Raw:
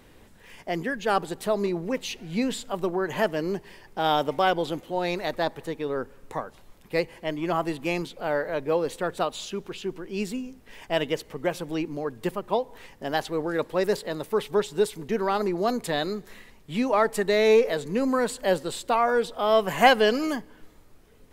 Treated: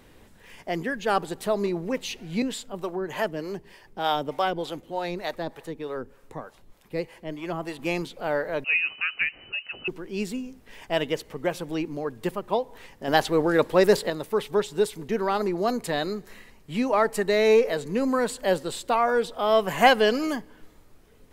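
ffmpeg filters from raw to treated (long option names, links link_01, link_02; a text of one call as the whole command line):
ffmpeg -i in.wav -filter_complex "[0:a]asettb=1/sr,asplit=3[link_01][link_02][link_03];[link_01]atrim=end=2.424[link_04];[link_02]atrim=start=2.42:end=7.79,asetpts=PTS-STARTPTS,afade=type=in:duration=0.004:curve=qsin,afade=type=out:start_time=5.366:duration=0.004:curve=qsin,acrossover=split=450[link_05][link_06];[link_05]aeval=exprs='val(0)*(1-0.7/2+0.7/2*cos(2*PI*3.3*n/s))':channel_layout=same[link_07];[link_06]aeval=exprs='val(0)*(1-0.7/2-0.7/2*cos(2*PI*3.3*n/s))':channel_layout=same[link_08];[link_07][link_08]amix=inputs=2:normalize=0[link_09];[link_03]atrim=start=7.786[link_10];[link_04][link_09]acrossfade=duration=0.004:curve1=hsin:curve2=qsin[link_11];[link_11][link_10]acrossfade=duration=0.004:curve1=qsin:curve2=hsin,asettb=1/sr,asplit=3[link_12][link_13][link_14];[link_12]atrim=end=8.644[link_15];[link_13]atrim=start=8.64:end=9.88,asetpts=PTS-STARTPTS,afade=type=in:duration=0.004:curve=qsin,afade=type=out:start_time=1.236:duration=0.004:curve=qsin,lowpass=frequency=2600:width_type=q:width=0.5098,lowpass=frequency=2600:width_type=q:width=0.6013,lowpass=frequency=2600:width_type=q:width=0.9,lowpass=frequency=2600:width_type=q:width=2.563,afreqshift=-3000[link_16];[link_14]atrim=start=9.876[link_17];[link_15][link_16]acrossfade=duration=0.004:curve1=hsin:curve2=qsin[link_18];[link_18][link_17]acrossfade=duration=0.004:curve1=qsin:curve2=hsin,asettb=1/sr,asplit=3[link_19][link_20][link_21];[link_19]atrim=end=15.634[link_22];[link_20]atrim=start=15.63:end=17.89,asetpts=PTS-STARTPTS,afade=type=in:duration=0.004:curve=qsin,afade=type=out:start_time=2.256:duration=0.004:curve=qsin,bandreject=frequency=3500:width=12[link_23];[link_21]atrim=start=17.886[link_24];[link_22][link_23]acrossfade=duration=0.004:curve1=hsin:curve2=qsin[link_25];[link_25][link_24]acrossfade=duration=0.004:curve1=qsin:curve2=hsin,asplit=3[link_26][link_27][link_28];[link_26]atrim=end=13.082[link_29];[link_27]atrim=start=13.078:end=14.102,asetpts=PTS-STARTPTS,volume=6dB[link_30];[link_28]atrim=start=14.098[link_31];[link_29][link_30]acrossfade=duration=0.004:curve1=hsin:curve2=hsin[link_32];[link_32][link_31]acrossfade=duration=0.004:curve1=hsin:curve2=hsin" out.wav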